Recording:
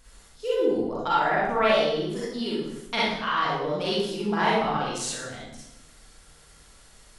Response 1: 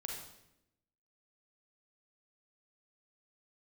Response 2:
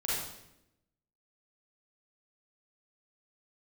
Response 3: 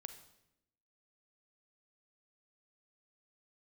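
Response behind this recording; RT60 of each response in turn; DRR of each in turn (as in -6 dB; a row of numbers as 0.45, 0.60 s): 2; 0.85, 0.85, 0.85 s; -0.5, -8.0, 8.5 dB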